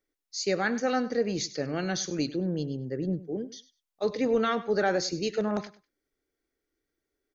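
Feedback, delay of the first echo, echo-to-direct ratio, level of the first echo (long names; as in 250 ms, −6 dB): 19%, 99 ms, −17.0 dB, −17.0 dB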